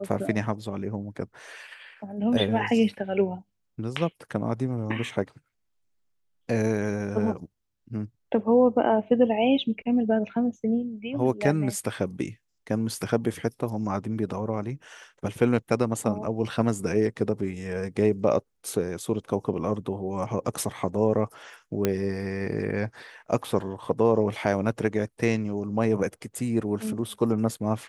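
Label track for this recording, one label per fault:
21.850000	21.850000	pop -9 dBFS

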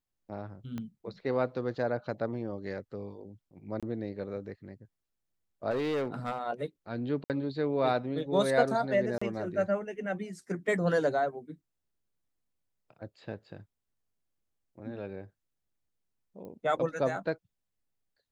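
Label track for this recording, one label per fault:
0.780000	0.780000	pop -25 dBFS
3.800000	3.830000	dropout 26 ms
5.700000	6.390000	clipped -27 dBFS
7.240000	7.300000	dropout 58 ms
9.180000	9.210000	dropout 35 ms
16.450000	16.450000	pop -35 dBFS

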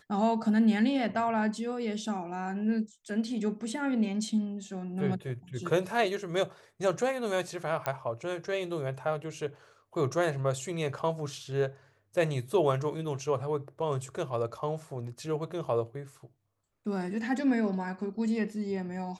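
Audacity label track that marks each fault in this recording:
7.860000	7.860000	pop -15 dBFS

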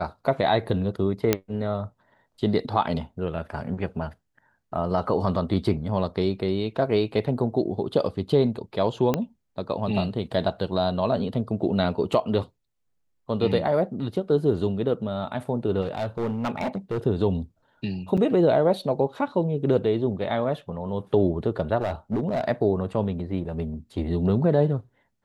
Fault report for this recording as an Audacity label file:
1.330000	1.330000	pop -5 dBFS
9.140000	9.140000	pop -10 dBFS
15.810000	16.980000	clipped -22.5 dBFS
18.170000	18.180000	dropout 6.2 ms
21.800000	22.440000	clipped -20.5 dBFS

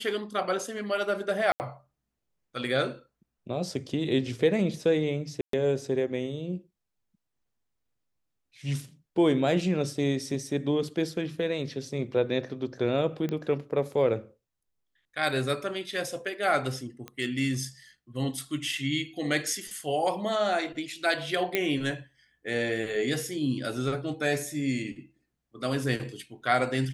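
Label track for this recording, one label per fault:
1.520000	1.600000	dropout 79 ms
5.410000	5.530000	dropout 123 ms
13.290000	13.290000	pop -20 dBFS
17.080000	17.080000	pop -23 dBFS
21.550000	21.550000	pop -11 dBFS

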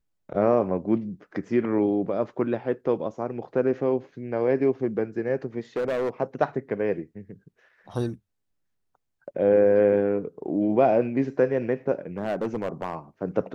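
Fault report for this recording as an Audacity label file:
5.760000	6.100000	clipped -22.5 dBFS
12.180000	12.950000	clipped -22.5 dBFS

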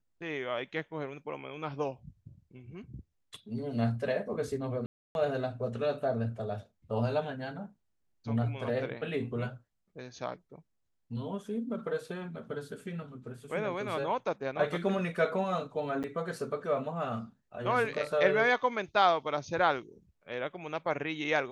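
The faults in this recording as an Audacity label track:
4.860000	5.150000	dropout 291 ms
16.030000	16.040000	dropout 8.4 ms

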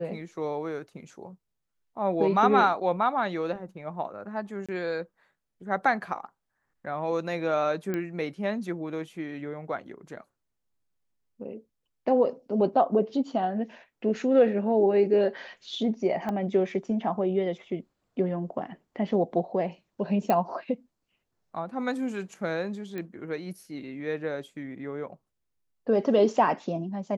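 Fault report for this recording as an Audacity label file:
4.660000	4.690000	dropout 26 ms
7.940000	7.940000	pop -18 dBFS
16.290000	16.290000	pop -20 dBFS
20.300000	20.300000	pop -13 dBFS
22.980000	22.980000	pop -23 dBFS

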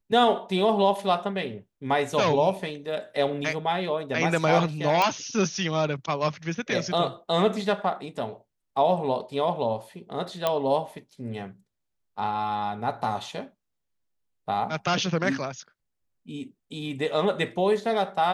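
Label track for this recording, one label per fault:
5.020000	5.020000	pop -10 dBFS
10.470000	10.470000	pop -10 dBFS

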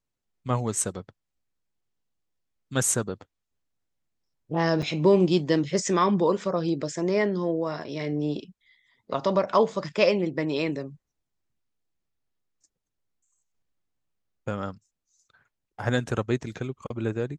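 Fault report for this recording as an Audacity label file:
4.820000	4.830000	dropout 6.2 ms

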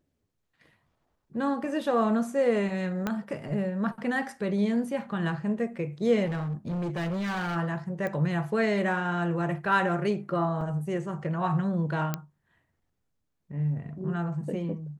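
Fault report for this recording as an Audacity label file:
3.070000	3.070000	pop -15 dBFS
6.250000	7.570000	clipped -28 dBFS
8.070000	8.070000	pop -21 dBFS
10.610000	10.610000	dropout 3.4 ms
12.140000	12.140000	pop -14 dBFS

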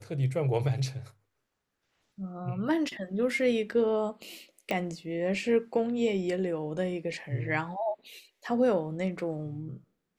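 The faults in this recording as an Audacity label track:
4.710000	4.710000	pop -17 dBFS

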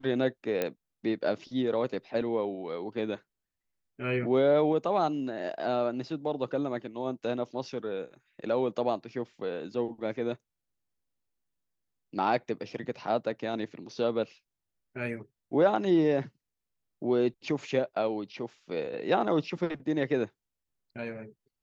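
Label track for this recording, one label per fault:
0.620000	0.620000	pop -15 dBFS

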